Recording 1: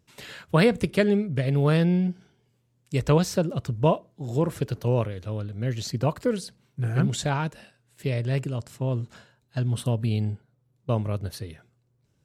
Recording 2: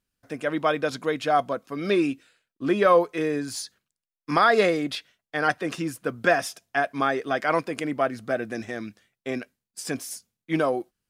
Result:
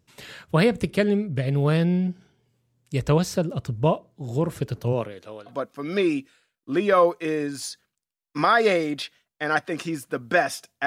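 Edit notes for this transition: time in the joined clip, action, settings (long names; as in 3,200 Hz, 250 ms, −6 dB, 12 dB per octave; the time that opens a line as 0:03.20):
recording 1
0:04.92–0:05.54: high-pass filter 150 Hz → 680 Hz
0:05.50: continue with recording 2 from 0:01.43, crossfade 0.08 s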